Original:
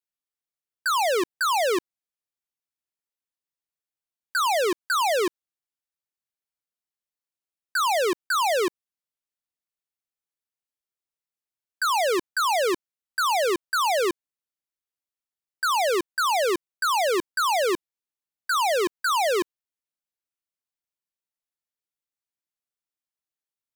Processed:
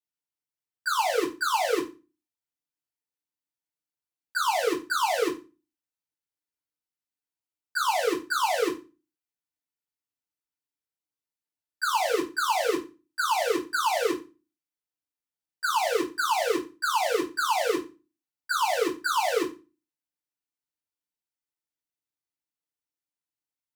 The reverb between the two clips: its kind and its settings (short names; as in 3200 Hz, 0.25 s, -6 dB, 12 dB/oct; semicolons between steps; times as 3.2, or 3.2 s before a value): FDN reverb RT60 0.3 s, low-frequency decay 1.4×, high-frequency decay 0.9×, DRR -8.5 dB; gain -12 dB